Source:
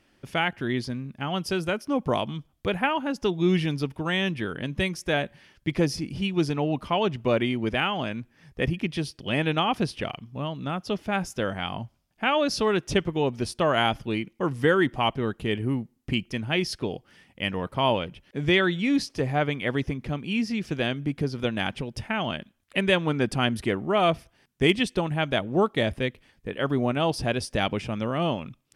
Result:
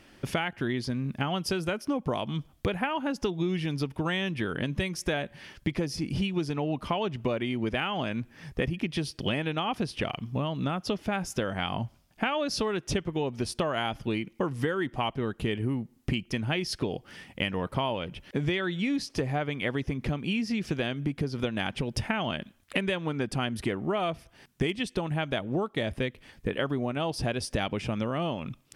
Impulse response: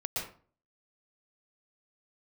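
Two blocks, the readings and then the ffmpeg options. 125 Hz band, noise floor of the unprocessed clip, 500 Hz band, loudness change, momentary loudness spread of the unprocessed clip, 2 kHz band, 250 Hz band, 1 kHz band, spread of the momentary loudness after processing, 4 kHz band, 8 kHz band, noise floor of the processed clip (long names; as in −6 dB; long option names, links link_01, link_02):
−2.5 dB, −66 dBFS, −5.0 dB, −4.0 dB, 9 LU, −5.0 dB, −3.5 dB, −5.0 dB, 4 LU, −4.5 dB, −1.0 dB, −61 dBFS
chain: -af "acompressor=threshold=-34dB:ratio=12,volume=8.5dB"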